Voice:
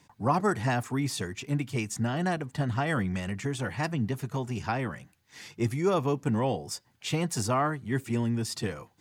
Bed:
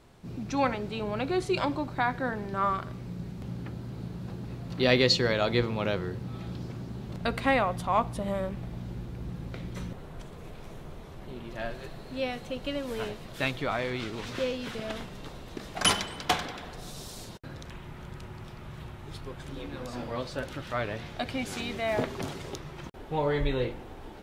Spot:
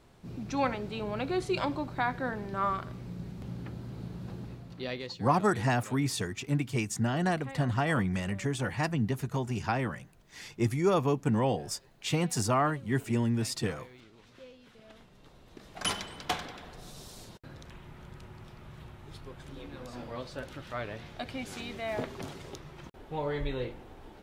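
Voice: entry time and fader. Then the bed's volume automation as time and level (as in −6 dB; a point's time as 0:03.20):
5.00 s, 0.0 dB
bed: 0:04.42 −2.5 dB
0:05.18 −20.5 dB
0:14.69 −20.5 dB
0:16.08 −5.5 dB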